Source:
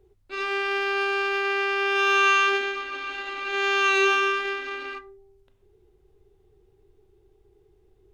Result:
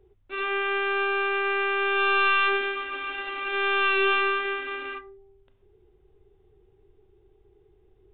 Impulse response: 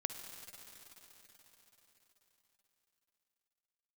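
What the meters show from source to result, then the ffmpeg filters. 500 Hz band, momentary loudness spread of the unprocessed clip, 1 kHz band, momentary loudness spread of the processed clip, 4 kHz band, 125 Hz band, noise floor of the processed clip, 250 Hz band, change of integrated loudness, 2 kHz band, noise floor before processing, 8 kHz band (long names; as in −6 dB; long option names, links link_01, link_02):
−1.0 dB, 13 LU, −1.0 dB, 11 LU, −2.5 dB, can't be measured, −62 dBFS, −1.0 dB, −1.5 dB, −1.0 dB, −62 dBFS, below −40 dB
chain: -af "aeval=exprs='(tanh(7.94*val(0)+0.35)-tanh(0.35))/7.94':channel_layout=same,aresample=8000,aresample=44100,volume=1.5dB"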